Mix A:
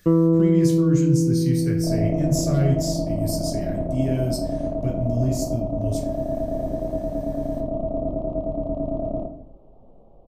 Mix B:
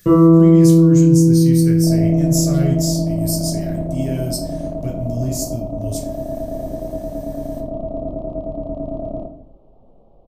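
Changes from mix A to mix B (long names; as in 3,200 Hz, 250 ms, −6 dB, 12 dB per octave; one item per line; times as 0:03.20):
first sound: send on
master: add high-shelf EQ 4,800 Hz +11.5 dB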